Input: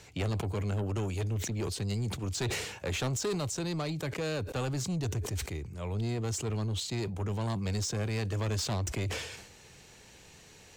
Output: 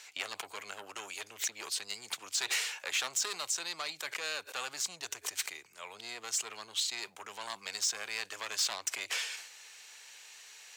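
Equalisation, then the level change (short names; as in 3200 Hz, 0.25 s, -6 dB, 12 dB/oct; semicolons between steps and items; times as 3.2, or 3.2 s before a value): HPF 1300 Hz 12 dB/oct; +4.5 dB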